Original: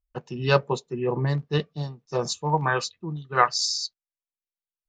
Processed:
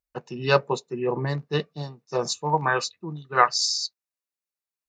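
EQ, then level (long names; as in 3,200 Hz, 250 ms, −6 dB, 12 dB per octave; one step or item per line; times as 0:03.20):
high-pass filter 210 Hz 6 dB per octave
notch filter 3,200 Hz, Q 7.7
+1.5 dB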